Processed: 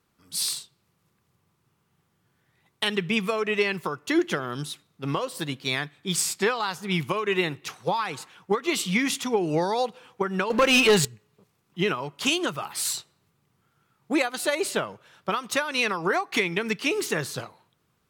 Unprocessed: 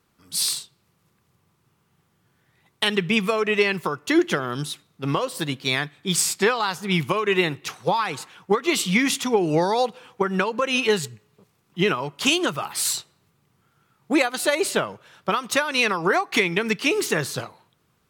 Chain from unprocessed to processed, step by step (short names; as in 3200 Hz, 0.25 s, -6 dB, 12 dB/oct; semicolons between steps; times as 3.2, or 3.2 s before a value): 10.5–11.05 sample leveller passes 3; gain -4 dB